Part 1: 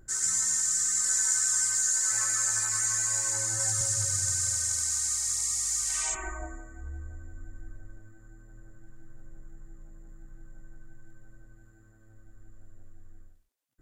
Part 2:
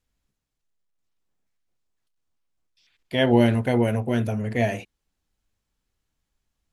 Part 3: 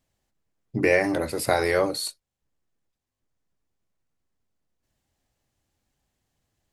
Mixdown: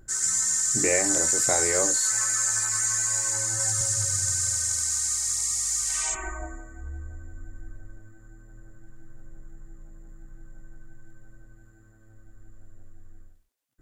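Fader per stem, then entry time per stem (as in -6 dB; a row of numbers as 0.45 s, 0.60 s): +2.5 dB, mute, -5.5 dB; 0.00 s, mute, 0.00 s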